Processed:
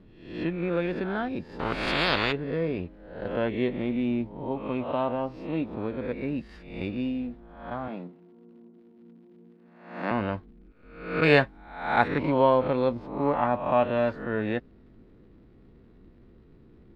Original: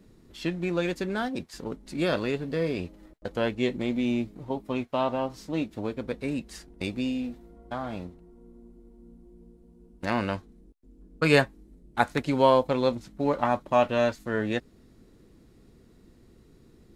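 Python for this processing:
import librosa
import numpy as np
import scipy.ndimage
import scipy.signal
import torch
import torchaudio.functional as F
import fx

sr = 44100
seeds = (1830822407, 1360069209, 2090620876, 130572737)

y = fx.spec_swells(x, sr, rise_s=0.65)
y = fx.steep_highpass(y, sr, hz=160.0, slope=36, at=(7.88, 10.11))
y = fx.high_shelf(y, sr, hz=2700.0, db=11.0, at=(11.23, 12.08))
y = fx.dmg_crackle(y, sr, seeds[0], per_s=180.0, level_db=-51.0)
y = fx.air_absorb(y, sr, metres=400.0)
y = fx.spectral_comp(y, sr, ratio=4.0, at=(1.59, 2.31), fade=0.02)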